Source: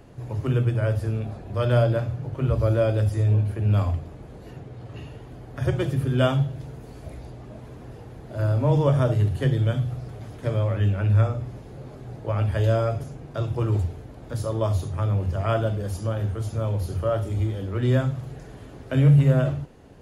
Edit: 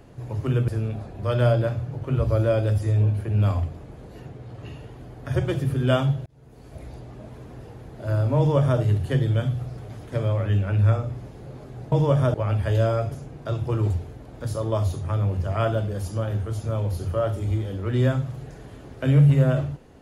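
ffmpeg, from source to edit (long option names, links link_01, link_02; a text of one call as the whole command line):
ffmpeg -i in.wav -filter_complex "[0:a]asplit=5[link_01][link_02][link_03][link_04][link_05];[link_01]atrim=end=0.682[link_06];[link_02]atrim=start=0.988:end=6.57,asetpts=PTS-STARTPTS,afade=type=out:start_time=5.578:duration=0.004:curve=hsin[link_07];[link_03]atrim=start=6.57:end=12.232,asetpts=PTS-STARTPTS,afade=type=in:duration=0.64[link_08];[link_04]atrim=start=8.688:end=9.112[link_09];[link_05]atrim=start=12.228[link_10];[link_07][link_08]concat=n=2:v=0:a=1[link_11];[link_06][link_11]acrossfade=duration=0.004:curve1=hsin:curve2=hsin[link_12];[link_12][link_09]acrossfade=duration=0.004:curve1=hsin:curve2=hsin[link_13];[link_13][link_10]acrossfade=duration=0.004:curve1=hsin:curve2=hsin" out.wav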